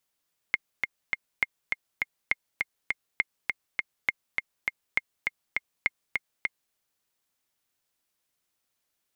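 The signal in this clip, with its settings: metronome 203 bpm, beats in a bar 3, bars 7, 2130 Hz, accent 3.5 dB -9.5 dBFS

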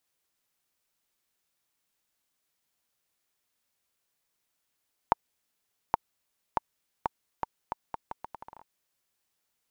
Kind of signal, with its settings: bouncing ball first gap 0.82 s, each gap 0.77, 912 Hz, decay 18 ms -6.5 dBFS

